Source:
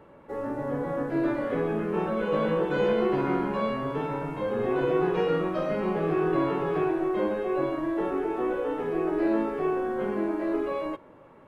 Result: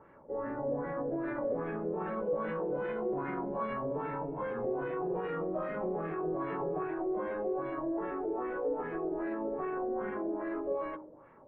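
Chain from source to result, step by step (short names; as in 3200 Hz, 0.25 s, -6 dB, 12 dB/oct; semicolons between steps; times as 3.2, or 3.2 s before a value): de-hum 51.63 Hz, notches 31; limiter -23 dBFS, peak gain reduction 8 dB; LFO low-pass sine 2.5 Hz 530–2000 Hz; gain -6.5 dB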